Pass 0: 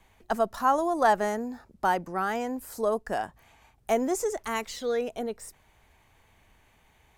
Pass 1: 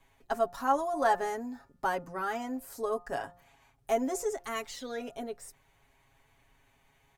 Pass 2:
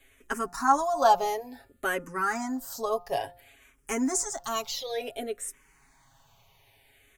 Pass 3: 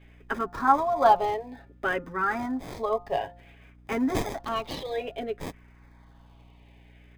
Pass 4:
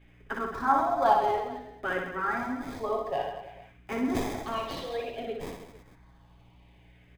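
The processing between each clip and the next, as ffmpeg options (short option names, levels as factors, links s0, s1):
-af "aecho=1:1:7.3:0.81,bandreject=f=175.8:t=h:w=4,bandreject=f=351.6:t=h:w=4,bandreject=f=527.4:t=h:w=4,bandreject=f=703.2:t=h:w=4,bandreject=f=879:t=h:w=4,bandreject=f=1054.8:t=h:w=4,bandreject=f=1230.6:t=h:w=4,bandreject=f=1406.4:t=h:w=4,bandreject=f=1582.2:t=h:w=4,bandreject=f=1758:t=h:w=4,volume=0.473"
-filter_complex "[0:a]highshelf=f=2600:g=7.5,asplit=2[s0][s1];[s1]afreqshift=-0.57[s2];[s0][s2]amix=inputs=2:normalize=1,volume=2"
-filter_complex "[0:a]aeval=exprs='val(0)+0.002*(sin(2*PI*60*n/s)+sin(2*PI*2*60*n/s)/2+sin(2*PI*3*60*n/s)/3+sin(2*PI*4*60*n/s)/4+sin(2*PI*5*60*n/s)/5)':c=same,acrossover=split=3700[s0][s1];[s1]acrusher=samples=31:mix=1:aa=0.000001[s2];[s0][s2]amix=inputs=2:normalize=0,volume=1.19"
-af "flanger=delay=2.6:depth=9.3:regen=-74:speed=1.8:shape=triangular,aecho=1:1:60|132|218.4|322.1|446.5:0.631|0.398|0.251|0.158|0.1"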